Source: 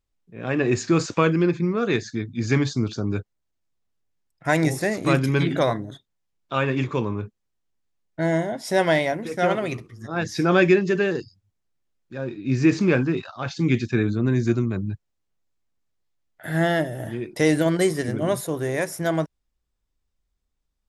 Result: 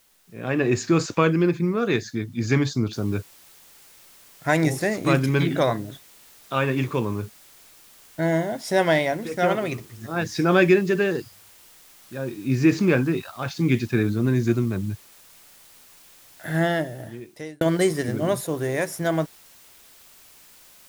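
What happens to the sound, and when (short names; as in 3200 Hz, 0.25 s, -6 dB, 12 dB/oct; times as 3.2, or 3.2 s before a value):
2.93 noise floor step -61 dB -51 dB
16.55–17.61 fade out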